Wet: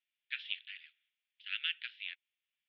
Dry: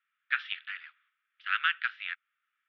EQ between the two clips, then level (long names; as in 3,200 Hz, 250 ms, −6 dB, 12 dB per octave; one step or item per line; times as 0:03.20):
inverse Chebyshev high-pass filter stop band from 900 Hz, stop band 60 dB
high-frequency loss of the air 280 metres
+7.5 dB